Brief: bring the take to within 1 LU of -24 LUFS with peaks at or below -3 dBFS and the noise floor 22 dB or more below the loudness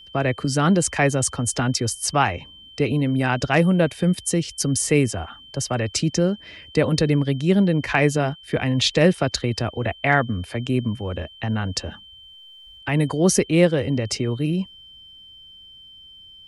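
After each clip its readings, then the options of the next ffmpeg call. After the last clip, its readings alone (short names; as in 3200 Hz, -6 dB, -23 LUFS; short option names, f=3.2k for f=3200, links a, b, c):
steady tone 3100 Hz; tone level -43 dBFS; loudness -21.5 LUFS; peak -4.5 dBFS; loudness target -24.0 LUFS
-> -af "bandreject=f=3.1k:w=30"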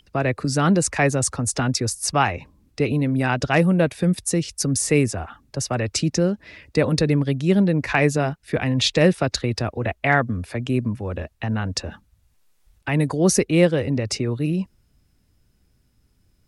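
steady tone none; loudness -21.5 LUFS; peak -5.0 dBFS; loudness target -24.0 LUFS
-> -af "volume=-2.5dB"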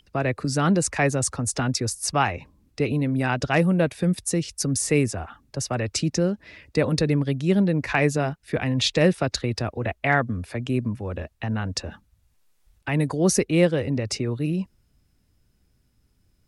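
loudness -24.0 LUFS; peak -7.5 dBFS; noise floor -66 dBFS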